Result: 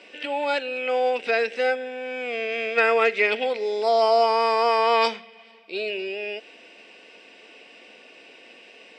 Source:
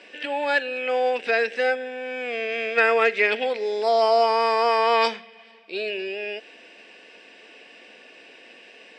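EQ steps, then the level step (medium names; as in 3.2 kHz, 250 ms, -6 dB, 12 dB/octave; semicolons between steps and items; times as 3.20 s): band-stop 1.7 kHz, Q 7.4; 0.0 dB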